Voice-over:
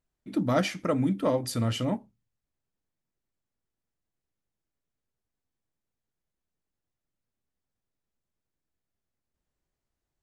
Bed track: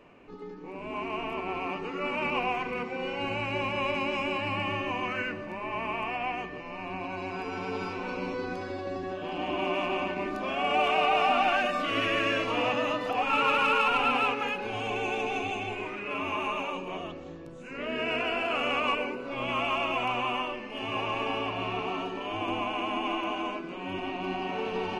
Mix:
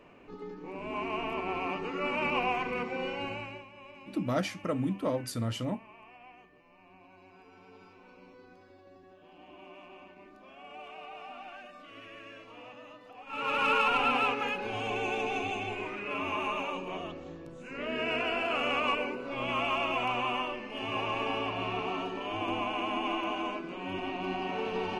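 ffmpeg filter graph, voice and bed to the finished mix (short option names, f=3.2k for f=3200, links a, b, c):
-filter_complex "[0:a]adelay=3800,volume=-5dB[a];[1:a]volume=19dB,afade=t=out:st=2.99:d=0.66:silence=0.0944061,afade=t=in:st=13.26:d=0.44:silence=0.105925[b];[a][b]amix=inputs=2:normalize=0"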